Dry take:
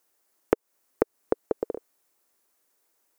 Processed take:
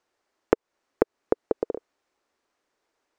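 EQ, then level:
high-frequency loss of the air 140 metres
+2.5 dB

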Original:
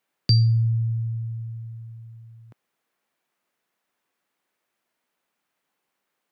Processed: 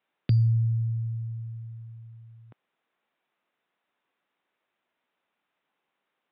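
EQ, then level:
Chebyshev low-pass filter 3,700 Hz, order 6
low-shelf EQ 140 Hz −4 dB
0.0 dB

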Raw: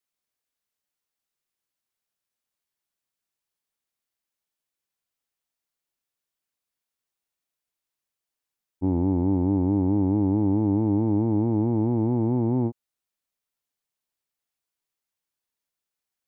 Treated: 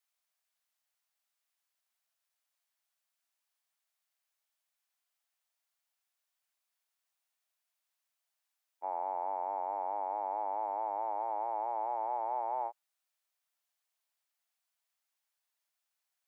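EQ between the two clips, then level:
elliptic high-pass filter 630 Hz, stop band 70 dB
dynamic equaliser 900 Hz, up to +5 dB, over −53 dBFS, Q 1.6
+2.0 dB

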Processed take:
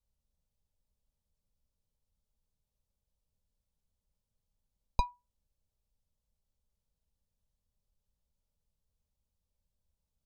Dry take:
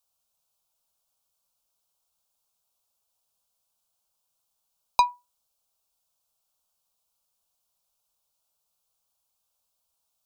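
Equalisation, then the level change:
Butterworth band-reject 710 Hz, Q 6.6
spectral tilt −4.5 dB per octave
parametric band 1,200 Hz −12.5 dB 1.9 octaves
−2.0 dB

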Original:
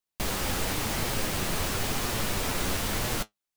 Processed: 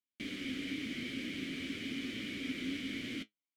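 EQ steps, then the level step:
formant filter i
+4.0 dB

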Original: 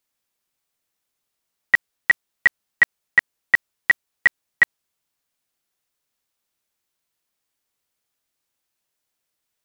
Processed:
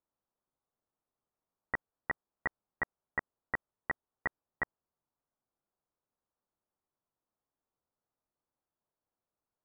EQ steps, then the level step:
low-pass filter 1,200 Hz 24 dB per octave
−3.5 dB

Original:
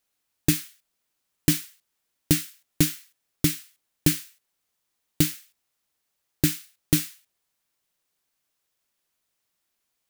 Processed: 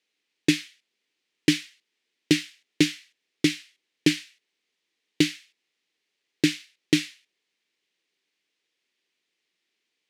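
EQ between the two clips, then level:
band-pass filter 340–3,600 Hz
flat-topped bell 920 Hz −12.5 dB
+8.0 dB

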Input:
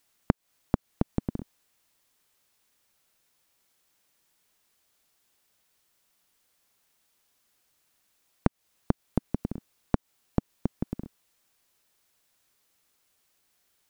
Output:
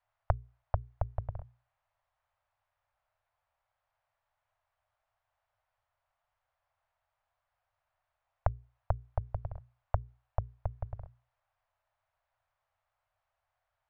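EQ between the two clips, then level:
elliptic band-stop filter 110–630 Hz, stop band 60 dB
low-pass filter 1,100 Hz 12 dB per octave
mains-hum notches 60/120/180/240/300/360/420 Hz
+2.0 dB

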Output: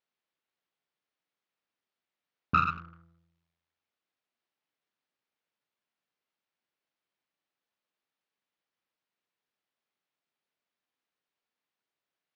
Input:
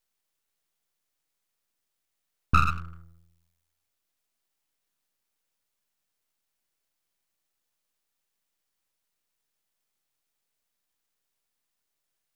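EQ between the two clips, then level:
band-pass filter 150–3,900 Hz
high-frequency loss of the air 62 metres
−1.5 dB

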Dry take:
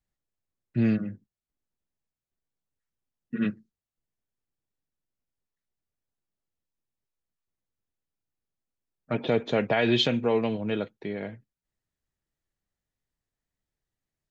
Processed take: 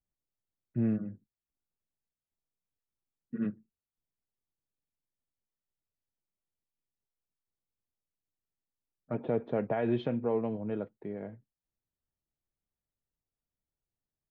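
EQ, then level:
low-pass filter 1,100 Hz 12 dB per octave
−5.5 dB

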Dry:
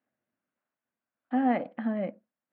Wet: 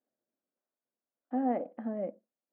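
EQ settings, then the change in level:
resonant band-pass 440 Hz, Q 1.3
0.0 dB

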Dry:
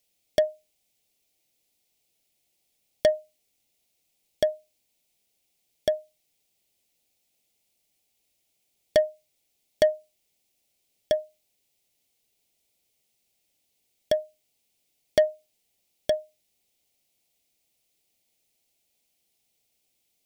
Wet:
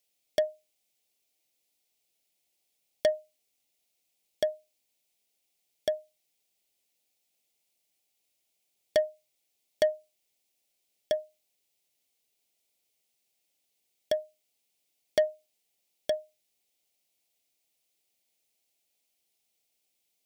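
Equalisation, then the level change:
low-shelf EQ 210 Hz −9.5 dB
−3.5 dB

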